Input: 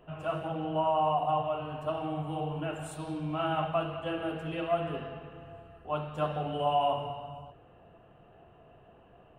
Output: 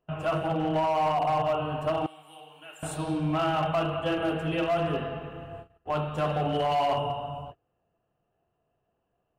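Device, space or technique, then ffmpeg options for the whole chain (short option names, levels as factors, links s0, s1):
limiter into clipper: -filter_complex "[0:a]agate=range=0.0447:threshold=0.00398:ratio=16:detection=peak,asettb=1/sr,asplit=3[s0][s1][s2];[s0]atrim=end=2.064[s3];[s1]atrim=start=2.06:end=2.83,asetpts=PTS-STARTPTS,afade=t=in:d=0.004:c=qsin,afade=t=out:st=0.766:d=0.004:c=qsin,aderivative[s4];[s2]atrim=start=2.826[s5];[s3][s4]acrossfade=d=0.004:c1=hsin:c2=qsin[s6];[s6][s5]acrossfade=d=0.004:c1=qsin:c2=hsin,alimiter=limit=0.0631:level=0:latency=1:release=25,asoftclip=type=hard:threshold=0.0398,volume=2.24"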